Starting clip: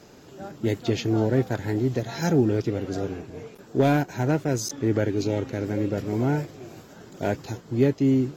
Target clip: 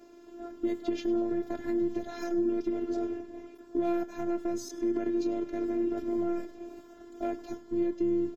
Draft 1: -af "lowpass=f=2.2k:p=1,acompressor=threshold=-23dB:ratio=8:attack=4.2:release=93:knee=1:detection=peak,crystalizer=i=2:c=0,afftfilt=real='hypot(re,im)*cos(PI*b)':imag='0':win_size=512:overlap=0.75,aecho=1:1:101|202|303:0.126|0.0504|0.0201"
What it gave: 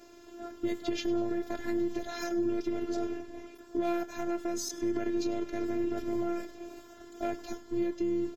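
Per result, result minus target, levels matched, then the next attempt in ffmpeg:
2000 Hz band +6.0 dB; 125 Hz band +3.0 dB
-af "lowpass=f=900:p=1,acompressor=threshold=-23dB:ratio=8:attack=4.2:release=93:knee=1:detection=peak,crystalizer=i=2:c=0,afftfilt=real='hypot(re,im)*cos(PI*b)':imag='0':win_size=512:overlap=0.75,aecho=1:1:101|202|303:0.126|0.0504|0.0201"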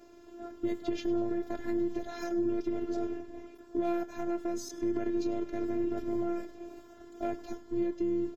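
125 Hz band +3.5 dB
-af "lowpass=f=900:p=1,acompressor=threshold=-23dB:ratio=8:attack=4.2:release=93:knee=1:detection=peak,highpass=f=170:t=q:w=1.7,crystalizer=i=2:c=0,afftfilt=real='hypot(re,im)*cos(PI*b)':imag='0':win_size=512:overlap=0.75,aecho=1:1:101|202|303:0.126|0.0504|0.0201"

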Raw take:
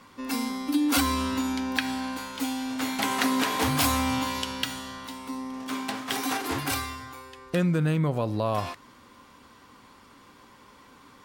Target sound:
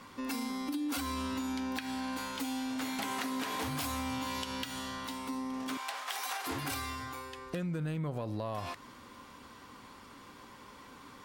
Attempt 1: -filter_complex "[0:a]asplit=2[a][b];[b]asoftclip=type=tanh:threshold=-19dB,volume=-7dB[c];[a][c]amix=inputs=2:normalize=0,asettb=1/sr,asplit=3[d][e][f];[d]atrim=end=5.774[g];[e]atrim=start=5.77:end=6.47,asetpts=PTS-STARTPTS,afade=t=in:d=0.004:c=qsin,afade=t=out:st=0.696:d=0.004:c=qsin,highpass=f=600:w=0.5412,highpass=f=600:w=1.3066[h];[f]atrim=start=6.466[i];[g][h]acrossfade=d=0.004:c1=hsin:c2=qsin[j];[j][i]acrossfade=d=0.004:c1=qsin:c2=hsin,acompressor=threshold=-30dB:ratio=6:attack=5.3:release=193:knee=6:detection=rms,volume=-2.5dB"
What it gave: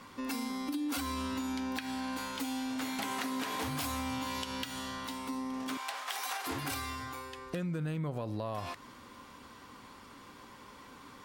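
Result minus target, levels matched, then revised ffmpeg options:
soft clip: distortion -8 dB
-filter_complex "[0:a]asplit=2[a][b];[b]asoftclip=type=tanh:threshold=-27.5dB,volume=-7dB[c];[a][c]amix=inputs=2:normalize=0,asettb=1/sr,asplit=3[d][e][f];[d]atrim=end=5.774[g];[e]atrim=start=5.77:end=6.47,asetpts=PTS-STARTPTS,afade=t=in:d=0.004:c=qsin,afade=t=out:st=0.696:d=0.004:c=qsin,highpass=f=600:w=0.5412,highpass=f=600:w=1.3066[h];[f]atrim=start=6.466[i];[g][h]acrossfade=d=0.004:c1=hsin:c2=qsin[j];[j][i]acrossfade=d=0.004:c1=qsin:c2=hsin,acompressor=threshold=-30dB:ratio=6:attack=5.3:release=193:knee=6:detection=rms,volume=-2.5dB"

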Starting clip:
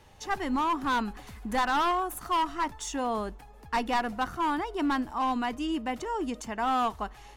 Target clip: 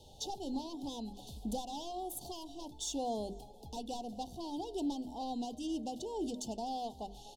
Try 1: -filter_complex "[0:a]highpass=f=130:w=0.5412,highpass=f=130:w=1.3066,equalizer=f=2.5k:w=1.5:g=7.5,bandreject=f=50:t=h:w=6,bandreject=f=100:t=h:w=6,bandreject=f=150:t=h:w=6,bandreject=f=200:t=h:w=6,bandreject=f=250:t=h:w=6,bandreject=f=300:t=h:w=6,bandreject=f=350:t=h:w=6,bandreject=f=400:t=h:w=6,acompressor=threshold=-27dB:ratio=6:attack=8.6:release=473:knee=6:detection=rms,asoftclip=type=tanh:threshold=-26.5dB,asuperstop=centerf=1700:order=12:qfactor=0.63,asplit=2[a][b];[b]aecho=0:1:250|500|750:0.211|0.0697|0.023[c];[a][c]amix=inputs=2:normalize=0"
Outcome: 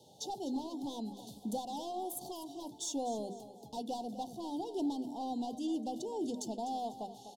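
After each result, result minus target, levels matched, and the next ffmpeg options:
2000 Hz band -7.0 dB; echo-to-direct +9 dB; 125 Hz band -3.0 dB
-filter_complex "[0:a]highpass=f=130:w=0.5412,highpass=f=130:w=1.3066,equalizer=f=2.5k:w=1.5:g=17,bandreject=f=50:t=h:w=6,bandreject=f=100:t=h:w=6,bandreject=f=150:t=h:w=6,bandreject=f=200:t=h:w=6,bandreject=f=250:t=h:w=6,bandreject=f=300:t=h:w=6,bandreject=f=350:t=h:w=6,bandreject=f=400:t=h:w=6,acompressor=threshold=-27dB:ratio=6:attack=8.6:release=473:knee=6:detection=rms,asoftclip=type=tanh:threshold=-26.5dB,asuperstop=centerf=1700:order=12:qfactor=0.63,asplit=2[a][b];[b]aecho=0:1:250|500|750:0.211|0.0697|0.023[c];[a][c]amix=inputs=2:normalize=0"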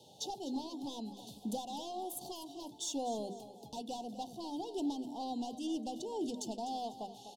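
echo-to-direct +9 dB; 125 Hz band -3.0 dB
-filter_complex "[0:a]highpass=f=130:w=0.5412,highpass=f=130:w=1.3066,equalizer=f=2.5k:w=1.5:g=17,bandreject=f=50:t=h:w=6,bandreject=f=100:t=h:w=6,bandreject=f=150:t=h:w=6,bandreject=f=200:t=h:w=6,bandreject=f=250:t=h:w=6,bandreject=f=300:t=h:w=6,bandreject=f=350:t=h:w=6,bandreject=f=400:t=h:w=6,acompressor=threshold=-27dB:ratio=6:attack=8.6:release=473:knee=6:detection=rms,asoftclip=type=tanh:threshold=-26.5dB,asuperstop=centerf=1700:order=12:qfactor=0.63,asplit=2[a][b];[b]aecho=0:1:250|500:0.075|0.0247[c];[a][c]amix=inputs=2:normalize=0"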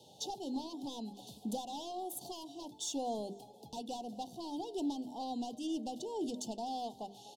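125 Hz band -3.0 dB
-filter_complex "[0:a]equalizer=f=2.5k:w=1.5:g=17,bandreject=f=50:t=h:w=6,bandreject=f=100:t=h:w=6,bandreject=f=150:t=h:w=6,bandreject=f=200:t=h:w=6,bandreject=f=250:t=h:w=6,bandreject=f=300:t=h:w=6,bandreject=f=350:t=h:w=6,bandreject=f=400:t=h:w=6,acompressor=threshold=-27dB:ratio=6:attack=8.6:release=473:knee=6:detection=rms,asoftclip=type=tanh:threshold=-26.5dB,asuperstop=centerf=1700:order=12:qfactor=0.63,asplit=2[a][b];[b]aecho=0:1:250|500:0.075|0.0247[c];[a][c]amix=inputs=2:normalize=0"

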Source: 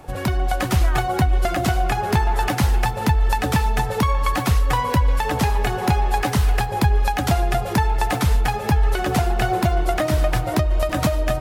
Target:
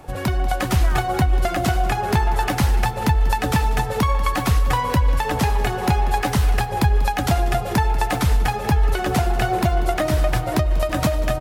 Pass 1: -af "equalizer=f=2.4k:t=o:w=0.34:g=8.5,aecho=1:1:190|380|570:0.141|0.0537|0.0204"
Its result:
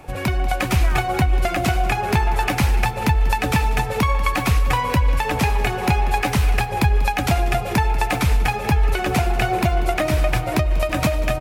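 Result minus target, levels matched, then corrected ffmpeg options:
2000 Hz band +2.5 dB
-af "aecho=1:1:190|380|570:0.141|0.0537|0.0204"

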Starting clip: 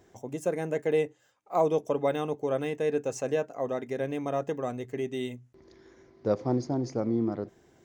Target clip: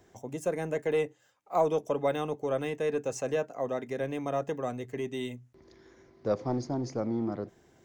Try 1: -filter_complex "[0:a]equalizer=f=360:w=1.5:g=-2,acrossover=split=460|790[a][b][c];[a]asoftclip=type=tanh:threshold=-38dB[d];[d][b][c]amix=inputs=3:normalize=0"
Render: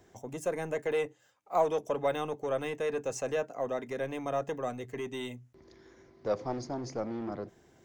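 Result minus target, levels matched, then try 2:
soft clip: distortion +10 dB
-filter_complex "[0:a]equalizer=f=360:w=1.5:g=-2,acrossover=split=460|790[a][b][c];[a]asoftclip=type=tanh:threshold=-26.5dB[d];[d][b][c]amix=inputs=3:normalize=0"

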